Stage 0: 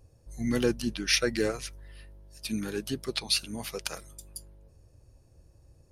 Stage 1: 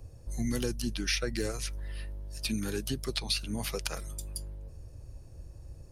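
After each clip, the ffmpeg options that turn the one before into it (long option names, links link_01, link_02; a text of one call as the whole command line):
ffmpeg -i in.wav -filter_complex "[0:a]lowshelf=frequency=91:gain=8,acrossover=split=100|4700[link_01][link_02][link_03];[link_01]acompressor=threshold=-42dB:ratio=4[link_04];[link_02]acompressor=threshold=-39dB:ratio=4[link_05];[link_03]acompressor=threshold=-44dB:ratio=4[link_06];[link_04][link_05][link_06]amix=inputs=3:normalize=0,volume=6dB" out.wav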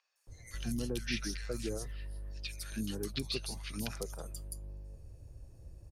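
ffmpeg -i in.wav -filter_complex "[0:a]acrossover=split=1200|5200[link_01][link_02][link_03];[link_03]adelay=160[link_04];[link_01]adelay=270[link_05];[link_05][link_02][link_04]amix=inputs=3:normalize=0,volume=-4.5dB" out.wav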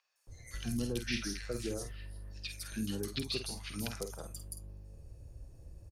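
ffmpeg -i in.wav -filter_complex "[0:a]asplit=2[link_01][link_02];[link_02]adelay=50,volume=-8.5dB[link_03];[link_01][link_03]amix=inputs=2:normalize=0" out.wav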